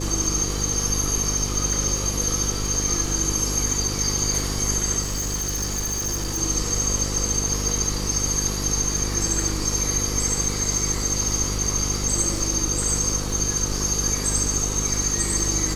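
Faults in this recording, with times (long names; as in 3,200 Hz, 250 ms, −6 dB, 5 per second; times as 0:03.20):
mains buzz 50 Hz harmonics 10 −28 dBFS
surface crackle 120 per second −32 dBFS
0:05.01–0:06.39: clipping −22.5 dBFS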